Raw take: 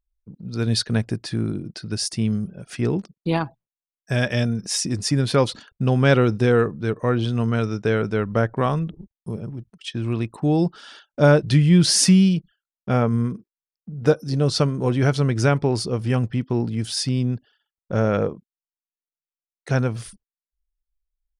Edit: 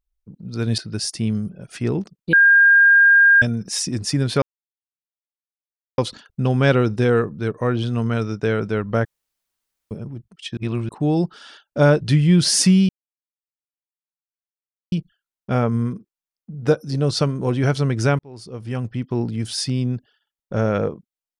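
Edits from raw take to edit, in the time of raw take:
0.78–1.76 cut
3.31–4.4 bleep 1610 Hz -8.5 dBFS
5.4 insert silence 1.56 s
8.47–9.33 room tone
9.99–10.31 reverse
12.31 insert silence 2.03 s
15.58–16.6 fade in

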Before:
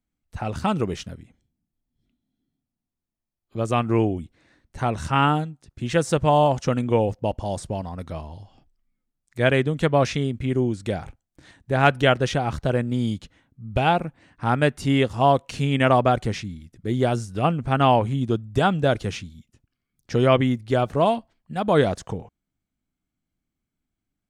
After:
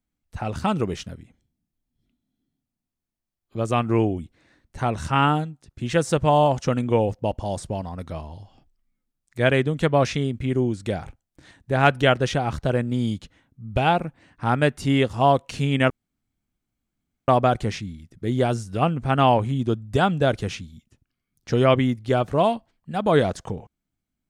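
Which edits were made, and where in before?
15.9 insert room tone 1.38 s

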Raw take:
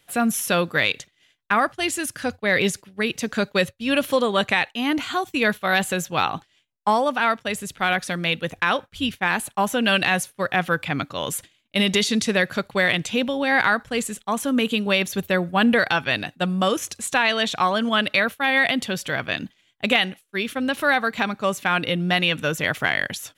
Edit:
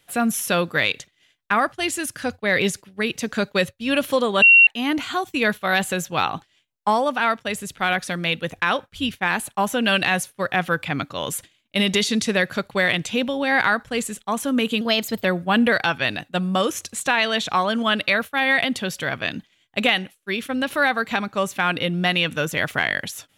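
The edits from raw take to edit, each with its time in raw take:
4.42–4.67 bleep 2740 Hz -7.5 dBFS
14.81–15.31 speed 115%

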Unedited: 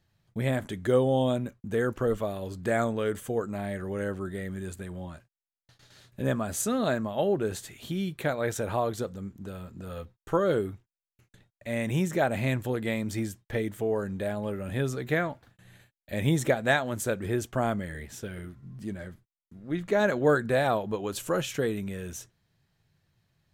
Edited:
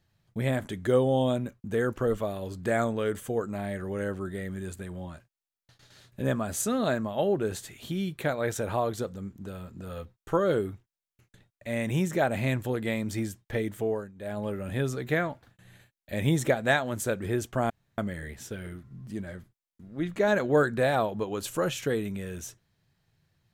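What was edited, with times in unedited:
13.88–14.39 dip -18 dB, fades 0.24 s
17.7 insert room tone 0.28 s

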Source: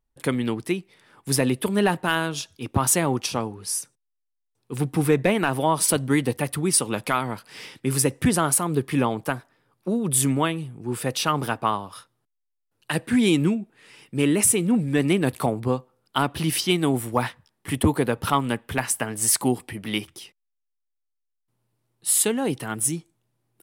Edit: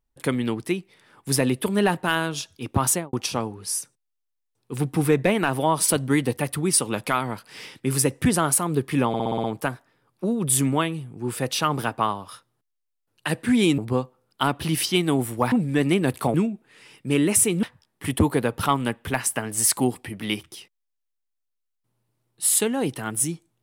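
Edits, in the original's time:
2.88–3.13 studio fade out
9.08 stutter 0.06 s, 7 plays
13.42–14.71 swap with 15.53–17.27

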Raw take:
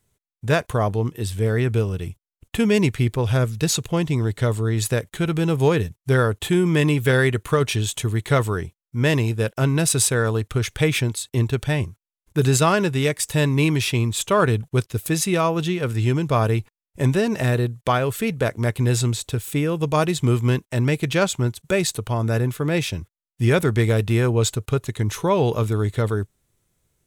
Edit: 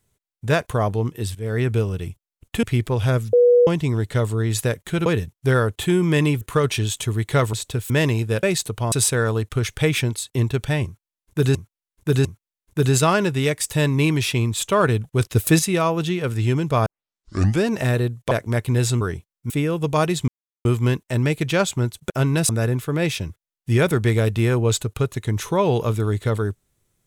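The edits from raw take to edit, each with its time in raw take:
1.35–1.62 fade in, from -16 dB
2.63–2.9 cut
3.6–3.94 bleep 486 Hz -10 dBFS
5.33–5.69 cut
7.04–7.38 cut
8.5–8.99 swap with 19.12–19.49
9.52–9.91 swap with 21.72–22.21
11.84–12.54 loop, 3 plays
14.8–15.18 gain +6.5 dB
16.45 tape start 0.79 s
17.9–18.42 cut
20.27 insert silence 0.37 s

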